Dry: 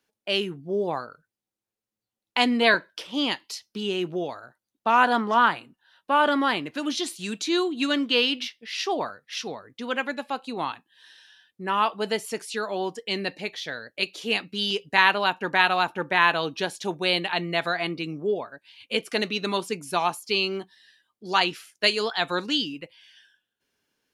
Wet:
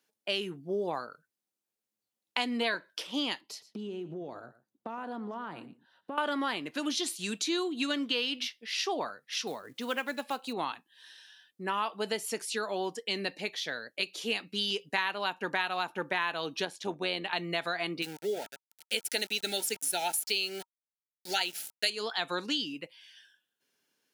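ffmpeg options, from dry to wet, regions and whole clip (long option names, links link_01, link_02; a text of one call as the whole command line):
ffmpeg -i in.wav -filter_complex "[0:a]asettb=1/sr,asplit=3[link_01][link_02][link_03];[link_01]atrim=end=3.414[link_04];[link_02]atrim=start=3.41:end=6.18,asetpts=PTS-STARTPTS,afade=type=in:duration=0.004:curve=qsin,afade=type=out:start_time=2.766:duration=0.004:curve=qsin,tiltshelf=frequency=870:gain=9,acompressor=threshold=-32dB:ratio=10:attack=3.2:release=140:knee=1:detection=peak,aecho=1:1:116:0.141,atrim=end_sample=122157[link_05];[link_03]atrim=start=6.176[link_06];[link_04][link_05]acrossfade=duration=0.004:curve1=hsin:curve2=qsin[link_07];[link_07][link_06]acrossfade=duration=0.004:curve1=qsin:curve2=hsin,asettb=1/sr,asplit=3[link_08][link_09][link_10];[link_08]atrim=end=9.474[link_11];[link_09]atrim=start=9.47:end=10.53,asetpts=PTS-STARTPTS,afade=type=in:duration=0.004:curve=qsin,afade=type=out:start_time=1.056:duration=0.004:curve=qsin,acompressor=mode=upward:threshold=-34dB:ratio=2.5:attack=3.2:release=140:knee=2.83:detection=peak,acrusher=bits=6:mode=log:mix=0:aa=0.000001[link_12];[link_10]atrim=start=10.526[link_13];[link_11][link_12]acrossfade=duration=0.004:curve1=hsin:curve2=qsin[link_14];[link_14][link_13]acrossfade=duration=0.004:curve1=qsin:curve2=hsin,asettb=1/sr,asplit=3[link_15][link_16][link_17];[link_15]atrim=end=16.654[link_18];[link_16]atrim=start=16.65:end=17.33,asetpts=PTS-STARTPTS,afade=type=in:duration=0.004:curve=qsin,afade=type=out:start_time=0.676:duration=0.004:curve=qsin,aemphasis=mode=reproduction:type=cd,tremolo=f=94:d=0.462[link_19];[link_17]atrim=start=17.326[link_20];[link_18][link_19]acrossfade=duration=0.004:curve1=hsin:curve2=qsin[link_21];[link_21][link_20]acrossfade=duration=0.004:curve1=qsin:curve2=hsin,asettb=1/sr,asplit=3[link_22][link_23][link_24];[link_22]atrim=end=18.024[link_25];[link_23]atrim=start=18.02:end=21.9,asetpts=PTS-STARTPTS,afade=type=in:duration=0.004:curve=qsin,afade=type=out:start_time=3.876:duration=0.004:curve=qsin,aemphasis=mode=production:type=bsi,aeval=exprs='val(0)*gte(abs(val(0)),0.0158)':channel_layout=same,asuperstop=centerf=1100:order=20:qfactor=3.1[link_26];[link_24]atrim=start=21.896[link_27];[link_25][link_26]acrossfade=duration=0.004:curve1=hsin:curve2=qsin[link_28];[link_28][link_27]acrossfade=duration=0.004:curve1=qsin:curve2=hsin,highpass=160,highshelf=frequency=4600:gain=5.5,acompressor=threshold=-25dB:ratio=4,volume=-3dB" out.wav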